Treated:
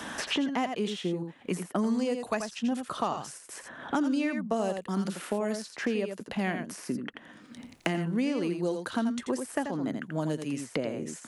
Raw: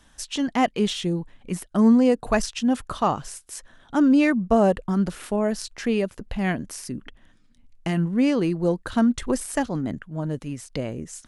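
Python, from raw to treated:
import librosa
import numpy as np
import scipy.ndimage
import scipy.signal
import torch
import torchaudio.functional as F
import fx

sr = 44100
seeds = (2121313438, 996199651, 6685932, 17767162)

y = scipy.signal.sosfilt(scipy.signal.butter(2, 200.0, 'highpass', fs=sr, output='sos'), x)
y = y + 10.0 ** (-7.5 / 20.0) * np.pad(y, (int(84 * sr / 1000.0), 0))[:len(y)]
y = fx.band_squash(y, sr, depth_pct=100)
y = F.gain(torch.from_numpy(y), -7.5).numpy()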